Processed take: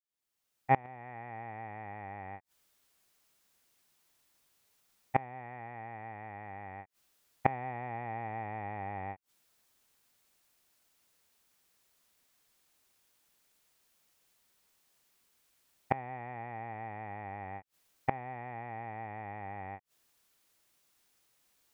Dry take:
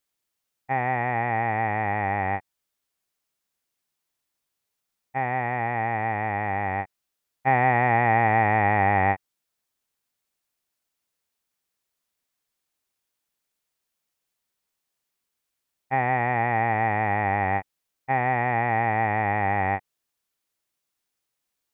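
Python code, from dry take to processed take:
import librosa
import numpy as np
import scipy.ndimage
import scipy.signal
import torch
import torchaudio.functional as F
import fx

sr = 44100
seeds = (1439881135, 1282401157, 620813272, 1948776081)

y = fx.fade_in_head(x, sr, length_s=1.4)
y = fx.gate_flip(y, sr, shuts_db=-19.0, range_db=-27)
y = fx.dynamic_eq(y, sr, hz=1700.0, q=1.5, threshold_db=-58.0, ratio=4.0, max_db=-6)
y = F.gain(torch.from_numpy(y), 9.0).numpy()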